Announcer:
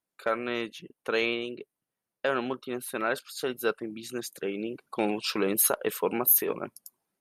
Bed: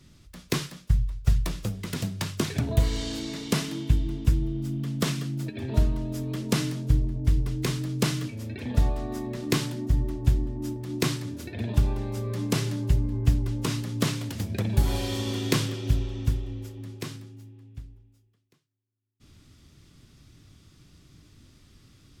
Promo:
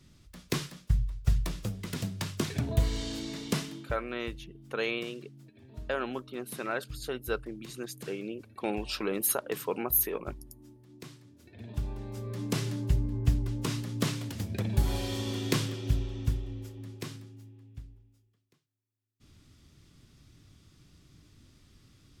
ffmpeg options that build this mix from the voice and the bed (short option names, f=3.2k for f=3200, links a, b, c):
-filter_complex "[0:a]adelay=3650,volume=-4.5dB[a];[1:a]volume=13.5dB,afade=t=out:st=3.49:d=0.48:silence=0.133352,afade=t=in:st=11.35:d=1.36:silence=0.133352[b];[a][b]amix=inputs=2:normalize=0"